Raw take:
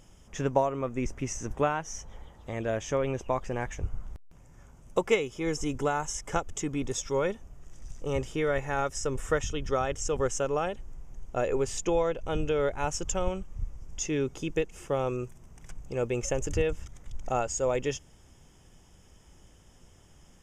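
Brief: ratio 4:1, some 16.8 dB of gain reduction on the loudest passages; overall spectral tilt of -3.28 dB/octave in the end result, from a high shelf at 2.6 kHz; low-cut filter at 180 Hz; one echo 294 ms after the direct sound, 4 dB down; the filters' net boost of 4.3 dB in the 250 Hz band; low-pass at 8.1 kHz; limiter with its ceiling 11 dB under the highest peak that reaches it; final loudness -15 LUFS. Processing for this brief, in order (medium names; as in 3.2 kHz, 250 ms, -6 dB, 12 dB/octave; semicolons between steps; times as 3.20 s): high-pass 180 Hz; low-pass 8.1 kHz; peaking EQ 250 Hz +6.5 dB; treble shelf 2.6 kHz +8.5 dB; compression 4:1, threshold -39 dBFS; peak limiter -33.5 dBFS; delay 294 ms -4 dB; trim +28 dB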